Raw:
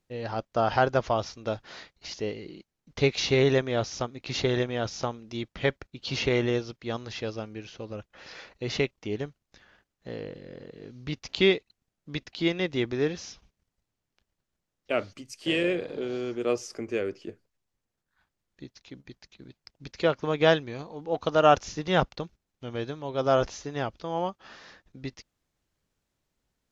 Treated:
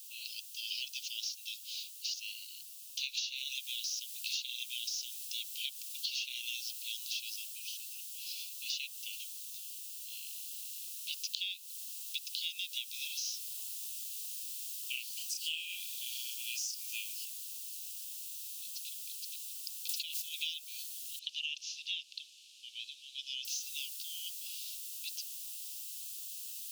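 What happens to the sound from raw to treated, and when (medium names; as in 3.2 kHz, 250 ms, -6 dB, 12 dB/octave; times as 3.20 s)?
3.36 s: noise floor step -59 dB -53 dB
7.47–10.27 s: comb of notches 200 Hz
13.22–17.25 s: doubling 32 ms -2.5 dB
19.89–20.29 s: level flattener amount 50%
21.19–23.45 s: low-pass 3.6 kHz
whole clip: steep high-pass 2.6 kHz 96 dB/octave; treble shelf 3.6 kHz +8 dB; compression 12:1, threshold -36 dBFS; trim +2 dB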